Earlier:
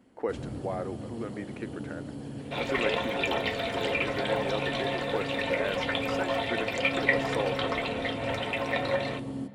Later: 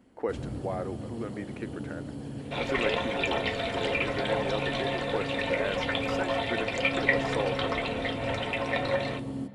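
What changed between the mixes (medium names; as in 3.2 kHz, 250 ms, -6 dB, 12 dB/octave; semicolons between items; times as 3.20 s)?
second sound: add low-pass 9.9 kHz 24 dB/octave; master: add bass shelf 62 Hz +8 dB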